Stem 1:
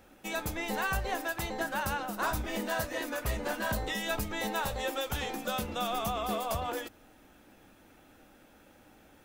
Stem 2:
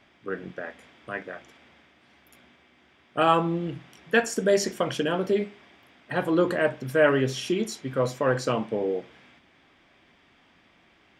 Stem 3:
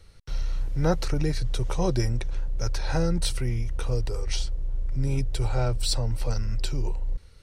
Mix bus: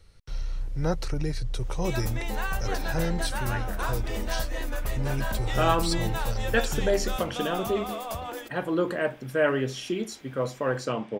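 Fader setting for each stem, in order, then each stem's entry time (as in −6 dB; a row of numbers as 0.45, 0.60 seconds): −1.0, −3.5, −3.5 decibels; 1.60, 2.40, 0.00 seconds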